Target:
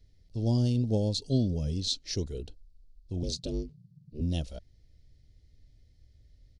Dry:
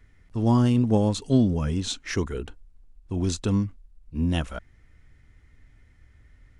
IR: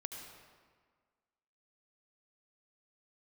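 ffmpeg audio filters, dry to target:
-filter_complex "[0:a]asettb=1/sr,asplit=3[link_01][link_02][link_03];[link_01]atrim=end=3.234[link_04];[link_02]atrim=start=3.23:end=4.21,asetpts=PTS-STARTPTS,afade=type=in:duration=0.004:curve=qsin,afade=type=out:start_time=0.976:duration=0.004:curve=qsin,aeval=exprs='val(0)*sin(2*PI*150*n/s)':channel_layout=same[link_05];[link_03]atrim=start=4.206[link_06];[link_04][link_05]acrossfade=duration=0.004:curve1=hsin:curve2=qsin[link_07];[link_07][link_06]acrossfade=duration=0.004:curve1=qsin:curve2=hsin,firequalizer=gain_entry='entry(140,0);entry(220,-5);entry(580,-1);entry(1100,-24);entry(4400,10);entry(7400,-4)':delay=0.05:min_phase=1,volume=-4dB"

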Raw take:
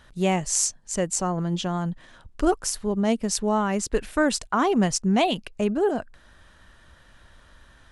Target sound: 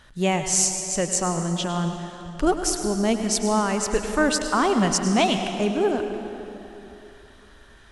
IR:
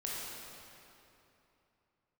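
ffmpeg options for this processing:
-filter_complex "[0:a]equalizer=frequency=4300:width=0.31:gain=3,asplit=2[link_01][link_02];[1:a]atrim=start_sample=2205,adelay=104[link_03];[link_02][link_03]afir=irnorm=-1:irlink=0,volume=-8.5dB[link_04];[link_01][link_04]amix=inputs=2:normalize=0"

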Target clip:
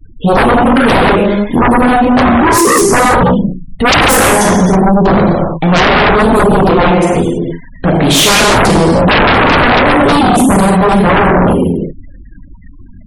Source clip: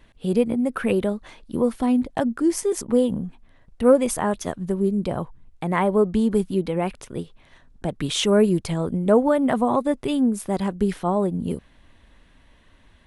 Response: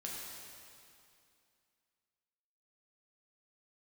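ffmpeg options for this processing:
-filter_complex "[1:a]atrim=start_sample=2205,afade=type=out:start_time=0.4:duration=0.01,atrim=end_sample=18081[link_01];[0:a][link_01]afir=irnorm=-1:irlink=0,aeval=exprs='0.596*sin(PI/2*8.91*val(0)/0.596)':channel_layout=same,afftfilt=real='re*gte(hypot(re,im),0.0562)':imag='im*gte(hypot(re,im),0.0562)':win_size=1024:overlap=0.75"

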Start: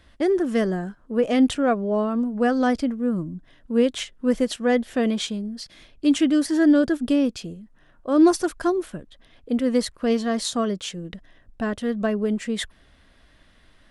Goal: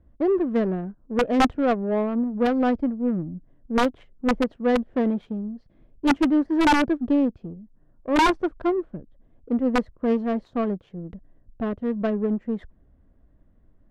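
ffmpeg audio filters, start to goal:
ffmpeg -i in.wav -af "aeval=exprs='(mod(3.55*val(0)+1,2)-1)/3.55':channel_layout=same,adynamicsmooth=sensitivity=0.5:basefreq=500" out.wav

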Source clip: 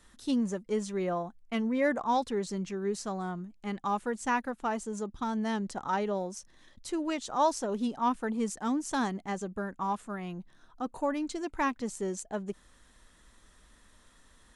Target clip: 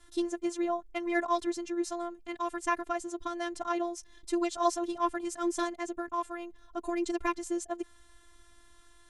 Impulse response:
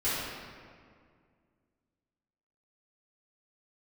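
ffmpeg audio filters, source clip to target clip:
-af "afftfilt=real='hypot(re,im)*cos(PI*b)':imag='0':win_size=512:overlap=0.75,atempo=1.6,volume=4dB"

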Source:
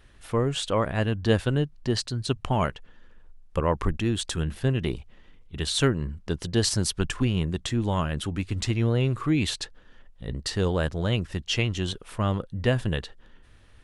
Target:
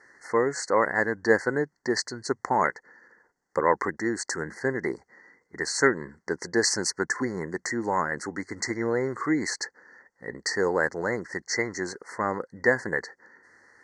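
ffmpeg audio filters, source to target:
ffmpeg -i in.wav -af "asuperstop=centerf=3000:order=20:qfactor=1.3,highpass=490,equalizer=frequency=640:width_type=q:width=4:gain=-10,equalizer=frequency=1200:width_type=q:width=4:gain=-6,equalizer=frequency=2000:width_type=q:width=4:gain=5,equalizer=frequency=4900:width_type=q:width=4:gain=-9,lowpass=frequency=6700:width=0.5412,lowpass=frequency=6700:width=1.3066,volume=8.5dB" out.wav

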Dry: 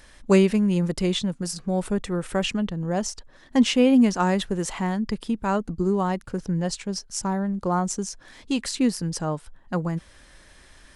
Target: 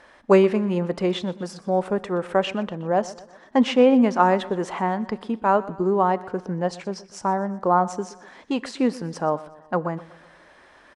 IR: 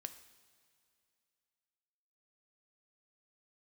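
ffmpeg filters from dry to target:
-filter_complex "[0:a]bandpass=frequency=780:width_type=q:width=0.89:csg=0,aecho=1:1:123|246|369|492:0.112|0.0561|0.0281|0.014,asplit=2[link_01][link_02];[1:a]atrim=start_sample=2205,afade=type=out:start_time=0.22:duration=0.01,atrim=end_sample=10143[link_03];[link_02][link_03]afir=irnorm=-1:irlink=0,volume=-4dB[link_04];[link_01][link_04]amix=inputs=2:normalize=0,volume=5dB"

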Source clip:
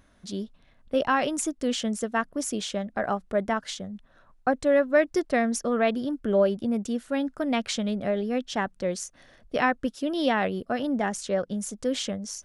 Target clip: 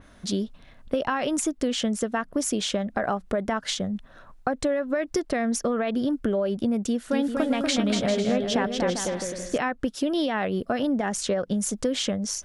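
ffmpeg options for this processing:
ffmpeg -i in.wav -filter_complex "[0:a]alimiter=limit=-18.5dB:level=0:latency=1:release=107,acompressor=threshold=-31dB:ratio=6,asettb=1/sr,asplit=3[link_01][link_02][link_03];[link_01]atrim=end=6.874[link_04];[link_02]atrim=start=6.87:end=9.58,asetpts=PTS-STARTPTS,afade=type=in:duration=0.004:curve=qsin,afade=type=out:start_time=2.706:duration=0.004:curve=qsin,aecho=1:1:240|396|497.4|563.3|606.2:0.631|0.398|0.251|0.158|0.1,atrim=end_sample=119511[link_05];[link_03]atrim=start=9.576[link_06];[link_04][link_05]acrossfade=duration=0.004:curve1=hsin:curve2=qsin[link_07];[link_07][link_06]acrossfade=duration=0.004:curve1=qsin:curve2=hsin,adynamicequalizer=threshold=0.00316:dfrequency=4400:dqfactor=0.7:tfrequency=4400:tqfactor=0.7:attack=5:release=100:ratio=0.375:range=2:mode=cutabove:tftype=highshelf,volume=9dB" out.wav

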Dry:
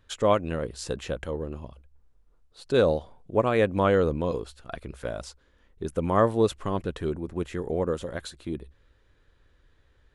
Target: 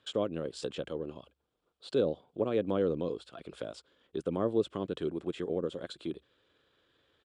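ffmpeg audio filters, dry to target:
ffmpeg -i in.wav -filter_complex "[0:a]highpass=220,equalizer=frequency=220:width_type=q:width=4:gain=-4,equalizer=frequency=910:width_type=q:width=4:gain=-4,equalizer=frequency=1900:width_type=q:width=4:gain=-6,equalizer=frequency=3300:width_type=q:width=4:gain=7,equalizer=frequency=6200:width_type=q:width=4:gain=-8,lowpass=frequency=8200:width=0.5412,lowpass=frequency=8200:width=1.3066,acrossover=split=410[link_01][link_02];[link_02]acompressor=threshold=-43dB:ratio=2.5[link_03];[link_01][link_03]amix=inputs=2:normalize=0,atempo=1.4" out.wav

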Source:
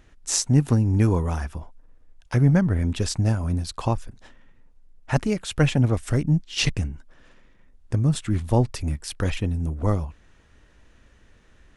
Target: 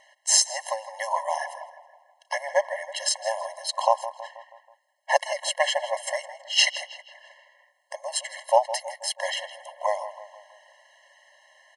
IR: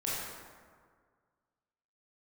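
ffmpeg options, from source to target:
-filter_complex "[0:a]asplit=2[link_01][link_02];[link_02]adelay=161,lowpass=frequency=3800:poles=1,volume=-13dB,asplit=2[link_03][link_04];[link_04]adelay=161,lowpass=frequency=3800:poles=1,volume=0.52,asplit=2[link_05][link_06];[link_06]adelay=161,lowpass=frequency=3800:poles=1,volume=0.52,asplit=2[link_07][link_08];[link_08]adelay=161,lowpass=frequency=3800:poles=1,volume=0.52,asplit=2[link_09][link_10];[link_10]adelay=161,lowpass=frequency=3800:poles=1,volume=0.52[link_11];[link_01][link_03][link_05][link_07][link_09][link_11]amix=inputs=6:normalize=0,afftfilt=real='re*eq(mod(floor(b*sr/1024/550),2),1)':imag='im*eq(mod(floor(b*sr/1024/550),2),1)':win_size=1024:overlap=0.75,volume=8.5dB"

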